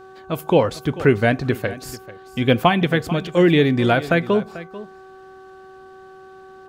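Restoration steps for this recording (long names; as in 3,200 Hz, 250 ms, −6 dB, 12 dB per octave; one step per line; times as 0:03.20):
hum removal 379.9 Hz, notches 4
echo removal 441 ms −16.5 dB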